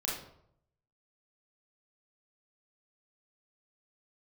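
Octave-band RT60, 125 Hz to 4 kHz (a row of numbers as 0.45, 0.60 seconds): 0.95, 0.75, 0.75, 0.70, 0.50, 0.45 seconds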